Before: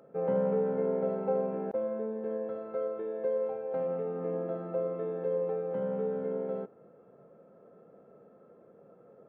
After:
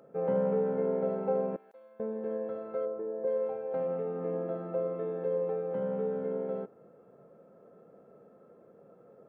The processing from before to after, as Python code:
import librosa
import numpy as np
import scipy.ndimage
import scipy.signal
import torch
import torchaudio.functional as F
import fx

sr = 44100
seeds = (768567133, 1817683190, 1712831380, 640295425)

y = fx.differentiator(x, sr, at=(1.56, 2.0))
y = fx.lowpass(y, sr, hz=1100.0, slope=12, at=(2.85, 3.26), fade=0.02)